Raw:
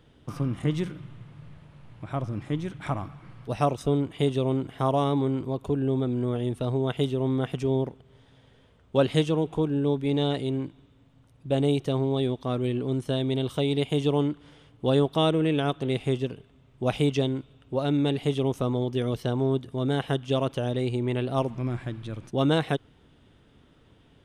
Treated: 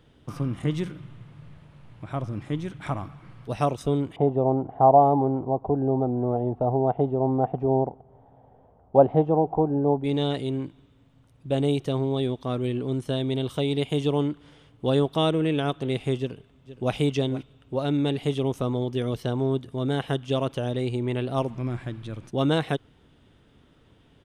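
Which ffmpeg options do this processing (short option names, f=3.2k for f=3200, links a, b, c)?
-filter_complex "[0:a]asettb=1/sr,asplit=3[a][b][c];[a]atrim=end=4.164[d];[b]atrim=start=4.16:end=10.04,asetpts=PTS-STARTPTS,afade=t=in:d=0.004:c=qsin,afade=t=out:st=5.876:d=0.004:c=qsin,lowpass=f=770:t=q:w=6.2[e];[c]atrim=start=10.036[f];[d][e]acrossfade=d=0.004:c1=hsin:c2=qsin[g];[g][f]acrossfade=d=0.004:c1=qsin:c2=hsin,asplit=2[h][i];[i]afade=t=in:st=16.18:d=0.01,afade=t=out:st=16.95:d=0.01,aecho=0:1:470|940:0.177828|0.0266742[j];[h][j]amix=inputs=2:normalize=0"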